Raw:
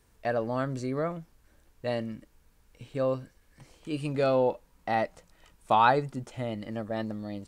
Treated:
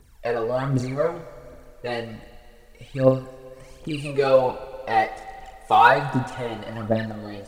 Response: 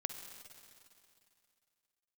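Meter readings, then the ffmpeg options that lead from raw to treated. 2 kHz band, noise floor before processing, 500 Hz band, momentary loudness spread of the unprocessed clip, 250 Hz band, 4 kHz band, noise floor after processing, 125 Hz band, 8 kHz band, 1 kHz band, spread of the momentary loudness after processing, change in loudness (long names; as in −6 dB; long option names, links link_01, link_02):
+9.0 dB, −65 dBFS, +6.5 dB, 15 LU, +4.5 dB, +7.0 dB, −50 dBFS, +7.0 dB, can't be measured, +7.0 dB, 21 LU, +7.0 dB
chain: -filter_complex "[0:a]aphaser=in_gain=1:out_gain=1:delay=2.7:decay=0.75:speed=1.3:type=triangular,asplit=2[link_01][link_02];[1:a]atrim=start_sample=2205,lowshelf=frequency=260:gain=-10,adelay=38[link_03];[link_02][link_03]afir=irnorm=-1:irlink=0,volume=-5.5dB[link_04];[link_01][link_04]amix=inputs=2:normalize=0,volume=2.5dB"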